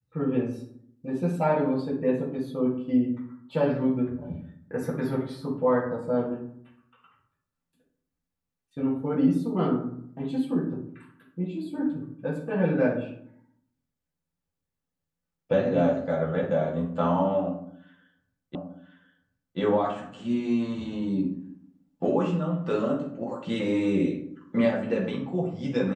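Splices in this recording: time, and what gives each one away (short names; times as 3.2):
18.55 repeat of the last 1.03 s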